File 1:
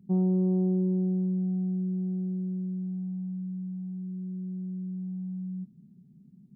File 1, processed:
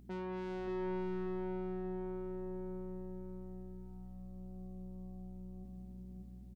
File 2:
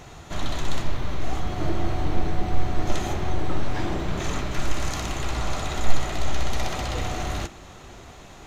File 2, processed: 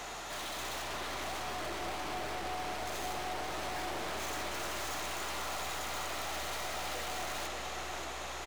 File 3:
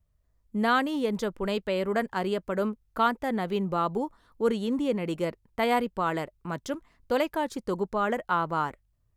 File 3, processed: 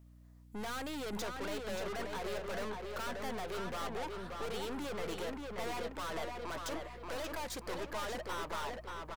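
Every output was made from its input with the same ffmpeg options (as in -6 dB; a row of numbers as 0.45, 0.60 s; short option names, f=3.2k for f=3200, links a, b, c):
-filter_complex "[0:a]highpass=520,alimiter=limit=-20dB:level=0:latency=1:release=278,aeval=exprs='(tanh(282*val(0)+0.25)-tanh(0.25))/282':c=same,aeval=exprs='val(0)+0.000501*(sin(2*PI*60*n/s)+sin(2*PI*2*60*n/s)/2+sin(2*PI*3*60*n/s)/3+sin(2*PI*4*60*n/s)/4+sin(2*PI*5*60*n/s)/5)':c=same,asplit=2[a][b];[b]adelay=582,lowpass=f=4.1k:p=1,volume=-3.5dB,asplit=2[c][d];[d]adelay=582,lowpass=f=4.1k:p=1,volume=0.44,asplit=2[e][f];[f]adelay=582,lowpass=f=4.1k:p=1,volume=0.44,asplit=2[g][h];[h]adelay=582,lowpass=f=4.1k:p=1,volume=0.44,asplit=2[i][j];[j]adelay=582,lowpass=f=4.1k:p=1,volume=0.44,asplit=2[k][l];[l]adelay=582,lowpass=f=4.1k:p=1,volume=0.44[m];[c][e][g][i][k][m]amix=inputs=6:normalize=0[n];[a][n]amix=inputs=2:normalize=0,volume=9.5dB"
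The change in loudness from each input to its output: -13.0, -8.0, -11.5 LU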